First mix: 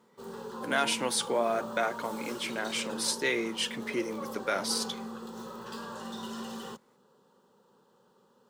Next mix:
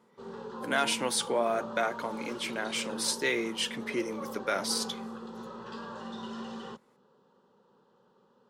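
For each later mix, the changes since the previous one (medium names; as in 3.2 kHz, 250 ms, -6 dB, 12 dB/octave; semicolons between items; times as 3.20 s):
background: add distance through air 130 m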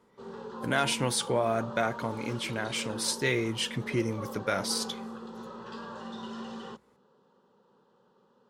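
speech: remove Bessel high-pass 290 Hz, order 6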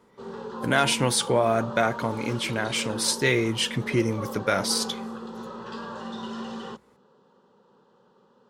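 speech +5.5 dB; background +5.0 dB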